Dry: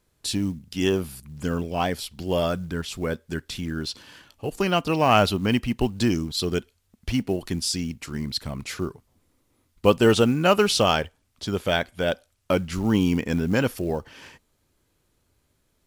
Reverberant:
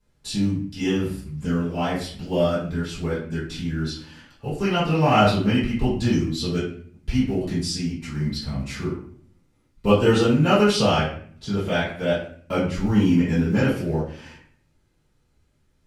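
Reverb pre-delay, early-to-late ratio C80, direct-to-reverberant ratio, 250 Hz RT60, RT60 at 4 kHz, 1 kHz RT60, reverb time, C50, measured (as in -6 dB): 4 ms, 8.0 dB, -13.0 dB, 0.75 s, 0.40 s, 0.45 s, 0.50 s, 4.0 dB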